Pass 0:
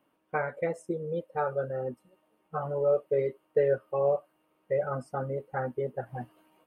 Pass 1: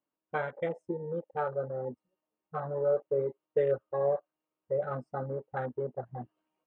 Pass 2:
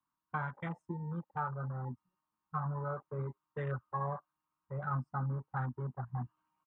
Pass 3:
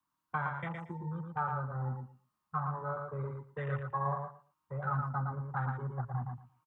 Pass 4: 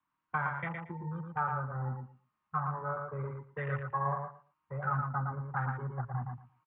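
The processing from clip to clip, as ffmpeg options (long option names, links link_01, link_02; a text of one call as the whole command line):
ffmpeg -i in.wav -af "lowpass=5700,afwtdn=0.01,volume=-2.5dB" out.wav
ffmpeg -i in.wav -filter_complex "[0:a]firequalizer=gain_entry='entry(130,0);entry(500,-26);entry(1000,4);entry(2000,-8);entry(3300,-10)':delay=0.05:min_phase=1,acrossover=split=140|330|720[link_01][link_02][link_03][link_04];[link_04]alimiter=level_in=12dB:limit=-24dB:level=0:latency=1:release=301,volume=-12dB[link_05];[link_01][link_02][link_03][link_05]amix=inputs=4:normalize=0,volume=6dB" out.wav
ffmpeg -i in.wav -filter_complex "[0:a]acrossover=split=170|440[link_01][link_02][link_03];[link_02]acompressor=threshold=-56dB:ratio=6[link_04];[link_01][link_04][link_03]amix=inputs=3:normalize=0,aecho=1:1:115|230|345:0.596|0.101|0.0172,volume=2.5dB" out.wav
ffmpeg -i in.wav -af "lowpass=frequency=2300:width_type=q:width=1.7" out.wav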